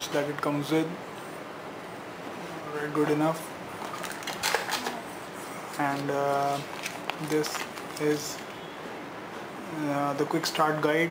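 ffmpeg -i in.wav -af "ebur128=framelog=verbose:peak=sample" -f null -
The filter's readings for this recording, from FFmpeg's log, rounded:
Integrated loudness:
  I:         -30.7 LUFS
  Threshold: -40.7 LUFS
Loudness range:
  LRA:         2.4 LU
  Threshold: -51.1 LUFS
  LRA low:   -32.6 LUFS
  LRA high:  -30.2 LUFS
Sample peak:
  Peak:       -8.3 dBFS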